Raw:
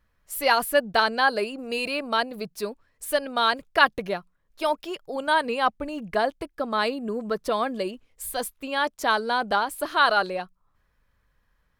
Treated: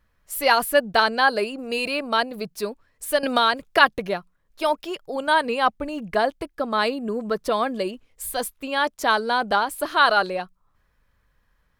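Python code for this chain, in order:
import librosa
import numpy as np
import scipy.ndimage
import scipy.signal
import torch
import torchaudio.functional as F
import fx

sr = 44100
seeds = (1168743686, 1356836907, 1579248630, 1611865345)

y = fx.band_squash(x, sr, depth_pct=70, at=(3.23, 3.8))
y = y * librosa.db_to_amplitude(2.5)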